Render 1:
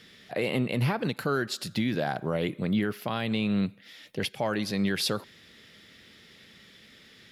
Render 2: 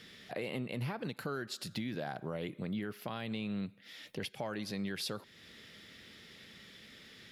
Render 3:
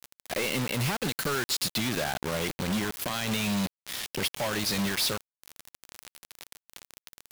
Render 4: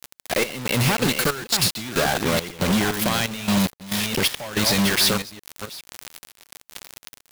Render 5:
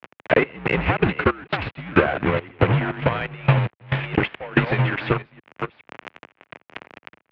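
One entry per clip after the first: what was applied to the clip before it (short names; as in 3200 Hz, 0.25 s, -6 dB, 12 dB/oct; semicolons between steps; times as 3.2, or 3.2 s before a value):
compressor 2:1, threshold -42 dBFS, peak gain reduction 11 dB; gain -1 dB
high shelf 2200 Hz +11.5 dB; companded quantiser 2-bit
reverse delay 0.415 s, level -7 dB; step gate "xx.xxx.x." 69 bpm -12 dB; gain +8.5 dB
mistuned SSB -71 Hz 160–2700 Hz; transient shaper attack +11 dB, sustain -5 dB; gain -1 dB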